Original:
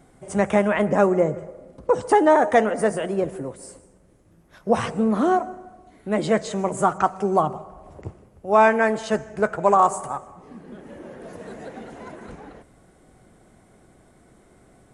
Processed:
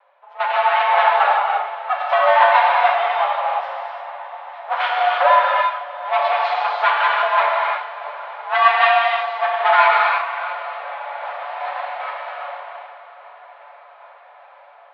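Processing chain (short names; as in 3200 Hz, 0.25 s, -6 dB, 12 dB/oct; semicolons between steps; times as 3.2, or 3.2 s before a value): minimum comb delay 6.9 ms; AGC gain up to 10 dB; tremolo saw down 2.5 Hz, depth 75%; soft clip -12.5 dBFS, distortion -12 dB; mistuned SSB +270 Hz 330–3500 Hz; on a send: diffused feedback echo 0.712 s, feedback 60%, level -15 dB; on the sum: non-linear reverb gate 0.38 s flat, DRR -3.5 dB; mismatched tape noise reduction decoder only; gain +2 dB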